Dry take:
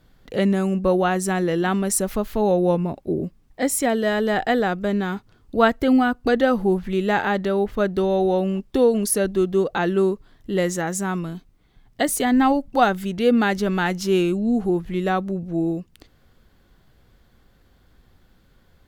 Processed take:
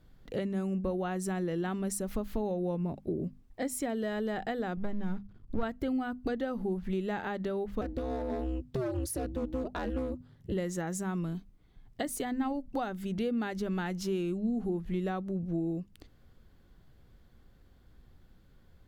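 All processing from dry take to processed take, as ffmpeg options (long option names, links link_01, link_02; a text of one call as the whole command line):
ffmpeg -i in.wav -filter_complex "[0:a]asettb=1/sr,asplit=3[link_01][link_02][link_03];[link_01]atrim=end=4.774[link_04];[link_02]atrim=start=4.77:end=5.63,asetpts=PTS-STARTPTS,afade=type=in:duration=0.004:curve=qsin,afade=type=out:start_time=0.856:duration=0.004:curve=qsin,aeval=exprs='if(lt(val(0),0),0.251*val(0),val(0))':channel_layout=same,bass=frequency=250:gain=9,treble=frequency=4000:gain=-5[link_05];[link_03]atrim=start=5.626[link_06];[link_04][link_05]acrossfade=duration=0.004:curve1=hsin:curve2=qsin[link_07];[link_07][link_06]acrossfade=duration=0.004:curve1=qsin:curve2=hsin,asettb=1/sr,asplit=3[link_08][link_09][link_10];[link_08]atrim=end=7.814[link_11];[link_09]atrim=start=7.81:end=10.52,asetpts=PTS-STARTPTS,afade=type=in:duration=0.004:curve=qsin,afade=type=out:start_time=2.706:duration=0.004:curve=qsin,asoftclip=type=hard:threshold=-17dB,aeval=exprs='val(0)*sin(2*PI*130*n/s)':channel_layout=same[link_12];[link_10]atrim=start=10.516[link_13];[link_11][link_12]acrossfade=duration=0.004:curve1=hsin:curve2=qsin[link_14];[link_14][link_13]acrossfade=duration=0.004:curve1=qsin:curve2=hsin,acompressor=threshold=-25dB:ratio=5,lowshelf=frequency=350:gain=7.5,bandreject=frequency=50:width_type=h:width=6,bandreject=frequency=100:width_type=h:width=6,bandreject=frequency=150:width_type=h:width=6,bandreject=frequency=200:width_type=h:width=6,bandreject=frequency=250:width_type=h:width=6,volume=-8.5dB" out.wav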